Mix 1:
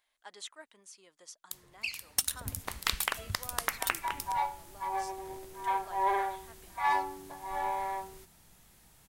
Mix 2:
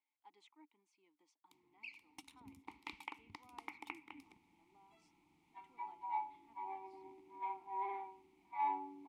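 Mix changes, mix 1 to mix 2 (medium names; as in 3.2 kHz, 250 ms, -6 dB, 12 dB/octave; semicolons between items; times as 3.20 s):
second sound: entry +1.75 s; master: add vowel filter u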